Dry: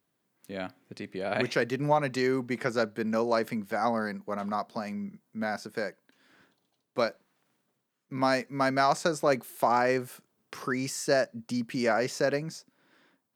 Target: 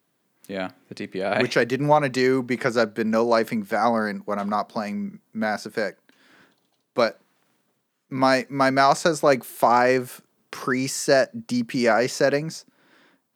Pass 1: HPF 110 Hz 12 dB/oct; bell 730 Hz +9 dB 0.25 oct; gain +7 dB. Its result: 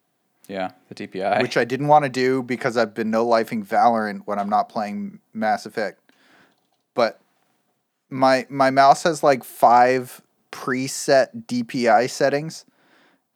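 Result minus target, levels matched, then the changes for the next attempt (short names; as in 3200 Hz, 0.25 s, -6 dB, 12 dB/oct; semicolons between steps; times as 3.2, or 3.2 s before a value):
1000 Hz band +2.5 dB
remove: bell 730 Hz +9 dB 0.25 oct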